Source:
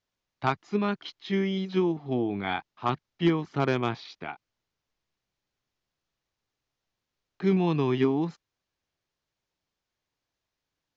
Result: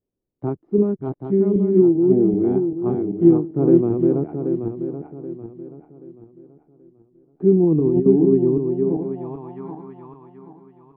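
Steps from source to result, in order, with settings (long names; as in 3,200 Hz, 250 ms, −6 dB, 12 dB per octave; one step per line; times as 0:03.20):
feedback delay that plays each chunk backwards 390 ms, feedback 58%, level −2.5 dB
0:07.63–0:08.06: compressor whose output falls as the input rises −25 dBFS, ratio −0.5
low-pass filter sweep 370 Hz → 1,000 Hz, 0:08.62–0:09.66
level +4 dB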